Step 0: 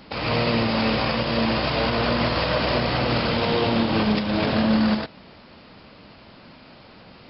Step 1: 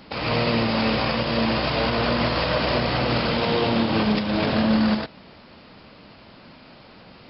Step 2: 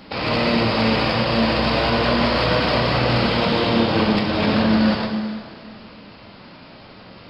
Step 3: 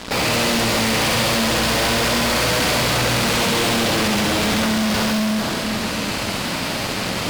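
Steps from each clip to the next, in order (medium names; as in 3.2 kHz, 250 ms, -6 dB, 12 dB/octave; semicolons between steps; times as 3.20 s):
hum notches 50/100 Hz
in parallel at -9.5 dB: saturation -21 dBFS, distortion -12 dB; on the sum: plate-style reverb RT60 2 s, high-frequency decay 0.9×, DRR 2.5 dB
reverse; upward compressor, threshold -30 dBFS; reverse; fuzz box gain 41 dB, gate -40 dBFS; feedback echo behind a high-pass 67 ms, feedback 75%, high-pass 1.7 kHz, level -4 dB; trim -5.5 dB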